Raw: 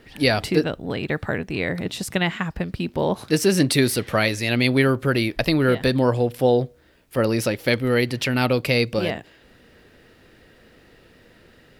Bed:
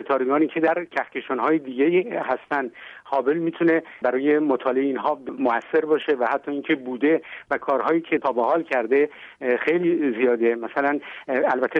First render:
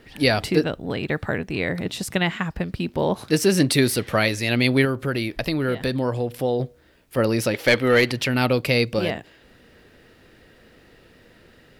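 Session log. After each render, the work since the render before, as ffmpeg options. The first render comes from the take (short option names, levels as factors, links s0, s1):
-filter_complex "[0:a]asettb=1/sr,asplit=3[s0][s1][s2];[s0]atrim=end=4.854[s3];[s1]atrim=start=4.85:end=6.6,asetpts=PTS-STARTPTS,afade=t=in:d=0.004:c=qsin,afade=t=out:st=1.746:d=0.004:c=qsin,acompressor=threshold=0.0447:ratio=1.5:attack=3.2:release=140:knee=1:detection=peak[s4];[s2]atrim=start=6.596[s5];[s3][s4]acrossfade=d=0.004:c1=hsin:c2=qsin[s6];[s6][s5]acrossfade=d=0.004:c1=qsin:c2=hsin,asettb=1/sr,asplit=3[s7][s8][s9];[s7]atrim=end=7.544[s10];[s8]atrim=start=7.54:end=8.12,asetpts=PTS-STARTPTS,afade=t=in:d=0.004:c=qsin,afade=t=out:st=0.576:d=0.004:c=qsin,asplit=2[s11][s12];[s12]highpass=f=720:p=1,volume=5.62,asoftclip=type=tanh:threshold=0.531[s13];[s11][s13]amix=inputs=2:normalize=0,lowpass=f=4000:p=1,volume=0.501[s14];[s9]atrim=start=8.116[s15];[s10][s14]acrossfade=d=0.004:c1=hsin:c2=qsin[s16];[s16][s15]acrossfade=d=0.004:c1=qsin:c2=hsin"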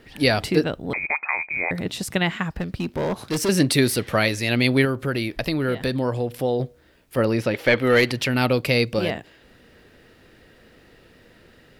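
-filter_complex "[0:a]asettb=1/sr,asplit=3[s0][s1][s2];[s0]atrim=end=0.934[s3];[s1]atrim=start=0.93:end=1.71,asetpts=PTS-STARTPTS,afade=t=in:d=0.004:c=qsin,afade=t=out:st=0.776:d=0.004:c=qsin,lowpass=f=2200:t=q:w=0.5098,lowpass=f=2200:t=q:w=0.6013,lowpass=f=2200:t=q:w=0.9,lowpass=f=2200:t=q:w=2.563,afreqshift=-2600[s4];[s2]atrim=start=1.706[s5];[s3][s4]acrossfade=d=0.004:c1=hsin:c2=qsin[s6];[s6][s5]acrossfade=d=0.004:c1=qsin:c2=hsin,asettb=1/sr,asplit=3[s7][s8][s9];[s7]atrim=end=2.514[s10];[s8]atrim=start=2.51:end=3.49,asetpts=PTS-STARTPTS,afade=t=in:d=0.004:c=qsin,afade=t=out:st=0.976:d=0.004:c=qsin,asoftclip=type=hard:threshold=0.1[s11];[s9]atrim=start=3.486[s12];[s10][s11]acrossfade=d=0.004:c1=hsin:c2=qsin[s13];[s13][s12]acrossfade=d=0.004:c1=qsin:c2=hsin,asettb=1/sr,asplit=3[s14][s15][s16];[s14]atrim=end=7.204[s17];[s15]atrim=start=7.2:end=7.82,asetpts=PTS-STARTPTS,afade=t=in:d=0.004:c=qsin,afade=t=out:st=0.616:d=0.004:c=qsin,acrossover=split=3600[s18][s19];[s19]acompressor=threshold=0.00708:ratio=4:attack=1:release=60[s20];[s18][s20]amix=inputs=2:normalize=0[s21];[s16]atrim=start=7.816[s22];[s17][s21]acrossfade=d=0.004:c1=hsin:c2=qsin[s23];[s23][s22]acrossfade=d=0.004:c1=qsin:c2=hsin"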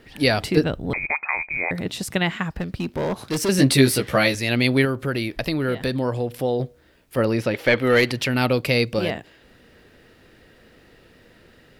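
-filter_complex "[0:a]asettb=1/sr,asplit=3[s0][s1][s2];[s0]atrim=end=0.574[s3];[s1]atrim=start=0.57:end=1.57,asetpts=PTS-STARTPTS,afade=t=in:d=0.004:c=qsin,afade=t=out:st=0.996:d=0.004:c=qsin,lowshelf=f=110:g=12[s4];[s2]atrim=start=1.566[s5];[s3][s4]acrossfade=d=0.004:c1=hsin:c2=qsin[s6];[s6][s5]acrossfade=d=0.004:c1=qsin:c2=hsin,asettb=1/sr,asplit=3[s7][s8][s9];[s7]atrim=end=3.574[s10];[s8]atrim=start=3.57:end=4.35,asetpts=PTS-STARTPTS,afade=t=in:d=0.004:c=qsin,afade=t=out:st=0.776:d=0.004:c=qsin,asplit=2[s11][s12];[s12]adelay=15,volume=0.75[s13];[s11][s13]amix=inputs=2:normalize=0,atrim=end_sample=34398[s14];[s9]atrim=start=4.346[s15];[s10][s14]acrossfade=d=0.004:c1=hsin:c2=qsin[s16];[s16][s15]acrossfade=d=0.004:c1=qsin:c2=hsin"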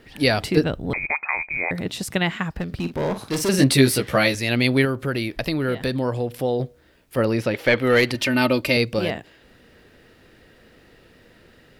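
-filter_complex "[0:a]asettb=1/sr,asplit=3[s0][s1][s2];[s0]atrim=end=2.654[s3];[s1]atrim=start=2.65:end=3.64,asetpts=PTS-STARTPTS,afade=t=in:d=0.004:c=qsin,afade=t=out:st=0.986:d=0.004:c=qsin,asplit=2[s4][s5];[s5]adelay=47,volume=0.316[s6];[s4][s6]amix=inputs=2:normalize=0,atrim=end_sample=43659[s7];[s2]atrim=start=3.636[s8];[s3][s7]acrossfade=d=0.004:c1=hsin:c2=qsin[s9];[s9][s8]acrossfade=d=0.004:c1=qsin:c2=hsin,asettb=1/sr,asplit=3[s10][s11][s12];[s10]atrim=end=8.144[s13];[s11]atrim=start=8.14:end=8.77,asetpts=PTS-STARTPTS,afade=t=in:d=0.004:c=qsin,afade=t=out:st=0.626:d=0.004:c=qsin,aecho=1:1:3.3:0.65,atrim=end_sample=27783[s14];[s12]atrim=start=8.766[s15];[s13][s14]acrossfade=d=0.004:c1=hsin:c2=qsin[s16];[s16][s15]acrossfade=d=0.004:c1=qsin:c2=hsin"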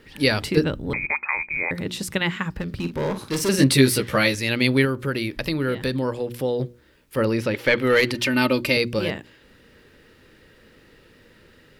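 -af "equalizer=f=700:t=o:w=0.2:g=-13,bandreject=f=60:t=h:w=6,bandreject=f=120:t=h:w=6,bandreject=f=180:t=h:w=6,bandreject=f=240:t=h:w=6,bandreject=f=300:t=h:w=6,bandreject=f=360:t=h:w=6"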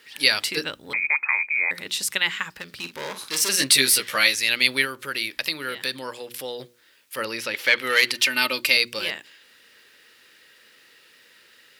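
-af "highpass=f=600:p=1,tiltshelf=f=1300:g=-7.5"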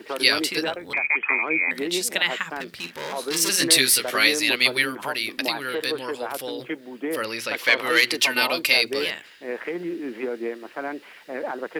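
-filter_complex "[1:a]volume=0.335[s0];[0:a][s0]amix=inputs=2:normalize=0"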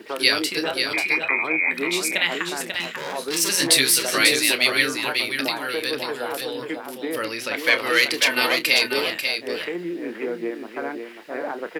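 -filter_complex "[0:a]asplit=2[s0][s1];[s1]adelay=29,volume=0.251[s2];[s0][s2]amix=inputs=2:normalize=0,aecho=1:1:541:0.501"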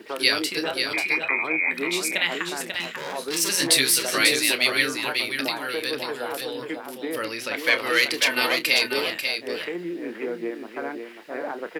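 -af "volume=0.794"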